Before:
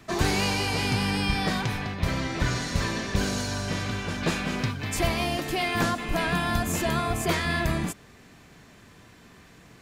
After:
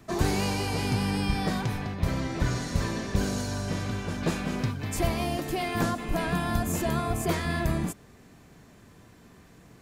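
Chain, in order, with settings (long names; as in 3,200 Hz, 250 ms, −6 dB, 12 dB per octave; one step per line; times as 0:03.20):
parametric band 2,800 Hz −7 dB 2.7 octaves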